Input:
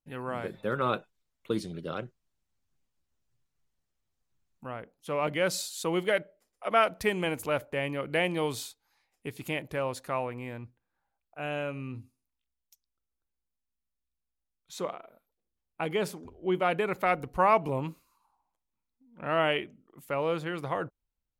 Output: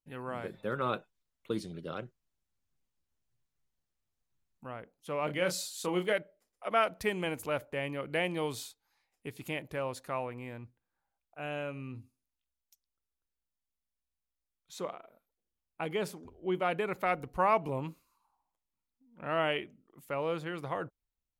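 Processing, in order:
0:05.26–0:06.13: double-tracking delay 28 ms −6.5 dB
level −4 dB

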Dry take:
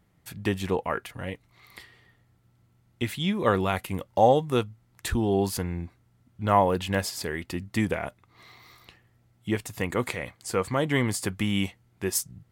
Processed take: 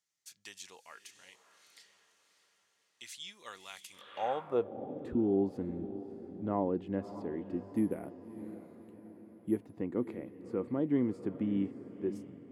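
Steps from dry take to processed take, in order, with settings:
0:07.70–0:09.77: bad sample-rate conversion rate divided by 4×, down filtered, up zero stuff
feedback delay with all-pass diffusion 605 ms, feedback 50%, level −12.5 dB
band-pass filter sweep 6,200 Hz → 290 Hz, 0:03.93–0:04.75

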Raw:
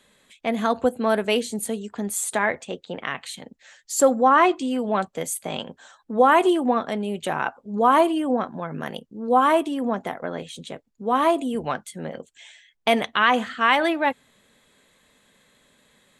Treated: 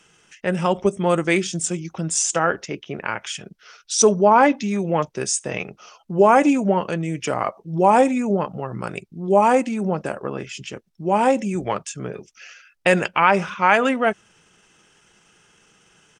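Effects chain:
high-shelf EQ 3,100 Hz +5 dB
pitch shifter −4 semitones
level +2 dB

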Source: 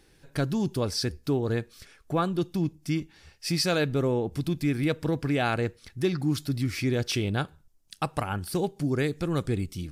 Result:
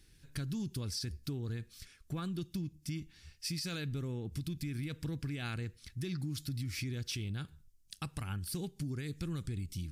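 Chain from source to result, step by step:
guitar amp tone stack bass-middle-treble 6-0-2
brickwall limiter −38 dBFS, peak gain reduction 9 dB
downward compressor, threshold −47 dBFS, peak gain reduction 6 dB
level +12.5 dB

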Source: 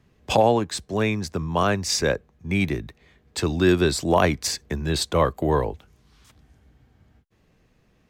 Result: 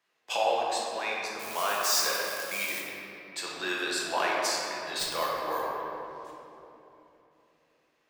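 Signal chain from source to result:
0:01.39–0:02.81: spike at every zero crossing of −18.5 dBFS
high-pass filter 870 Hz 12 dB per octave
0:04.99–0:05.63: sample-rate reduction 13,000 Hz, jitter 0%
rectangular room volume 150 cubic metres, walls hard, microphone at 0.76 metres
level −7.5 dB

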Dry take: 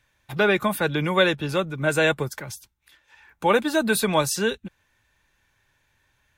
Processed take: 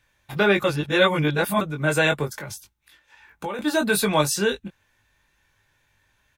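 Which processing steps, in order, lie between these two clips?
0:02.25–0:03.59: downward compressor 10 to 1, threshold −29 dBFS, peak gain reduction 14.5 dB
double-tracking delay 20 ms −5 dB
0:00.64–0:01.61: reverse

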